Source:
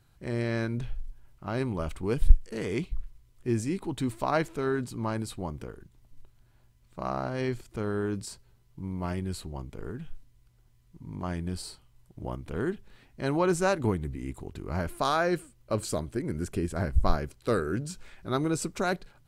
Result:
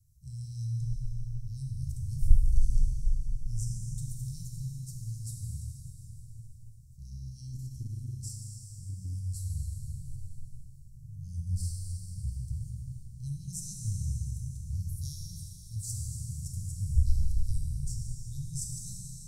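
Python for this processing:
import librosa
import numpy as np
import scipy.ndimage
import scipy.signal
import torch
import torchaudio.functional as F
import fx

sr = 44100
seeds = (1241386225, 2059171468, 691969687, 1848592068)

y = scipy.signal.sosfilt(scipy.signal.cheby1(4, 1.0, [130.0, 5600.0], 'bandstop', fs=sr, output='sos'), x)
y = fx.low_shelf(y, sr, hz=380.0, db=6.5, at=(11.37, 12.3), fade=0.02)
y = fx.rev_plate(y, sr, seeds[0], rt60_s=4.2, hf_ratio=0.8, predelay_ms=0, drr_db=-2.5)
y = fx.transformer_sat(y, sr, knee_hz=80.0, at=(7.18, 9.15))
y = F.gain(torch.from_numpy(y), -1.5).numpy()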